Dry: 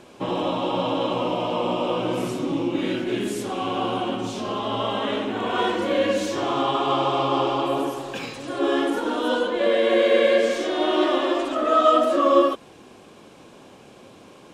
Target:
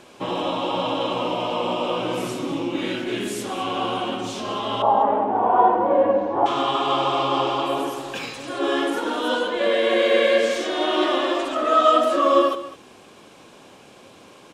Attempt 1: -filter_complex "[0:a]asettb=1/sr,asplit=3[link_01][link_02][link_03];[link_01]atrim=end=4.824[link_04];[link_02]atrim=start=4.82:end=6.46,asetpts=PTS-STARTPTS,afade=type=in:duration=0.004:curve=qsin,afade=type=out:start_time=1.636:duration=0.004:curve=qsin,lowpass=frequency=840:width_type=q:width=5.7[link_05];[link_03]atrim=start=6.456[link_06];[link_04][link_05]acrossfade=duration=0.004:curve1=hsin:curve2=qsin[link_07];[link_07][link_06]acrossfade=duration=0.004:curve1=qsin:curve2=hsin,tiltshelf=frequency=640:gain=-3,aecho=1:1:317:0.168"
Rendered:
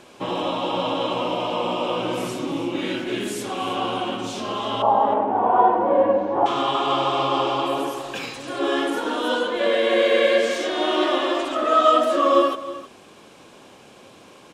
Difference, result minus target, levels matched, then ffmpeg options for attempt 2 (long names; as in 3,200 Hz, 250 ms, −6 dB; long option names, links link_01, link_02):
echo 114 ms late
-filter_complex "[0:a]asettb=1/sr,asplit=3[link_01][link_02][link_03];[link_01]atrim=end=4.824[link_04];[link_02]atrim=start=4.82:end=6.46,asetpts=PTS-STARTPTS,afade=type=in:duration=0.004:curve=qsin,afade=type=out:start_time=1.636:duration=0.004:curve=qsin,lowpass=frequency=840:width_type=q:width=5.7[link_05];[link_03]atrim=start=6.456[link_06];[link_04][link_05]acrossfade=duration=0.004:curve1=hsin:curve2=qsin[link_07];[link_07][link_06]acrossfade=duration=0.004:curve1=qsin:curve2=hsin,tiltshelf=frequency=640:gain=-3,aecho=1:1:203:0.168"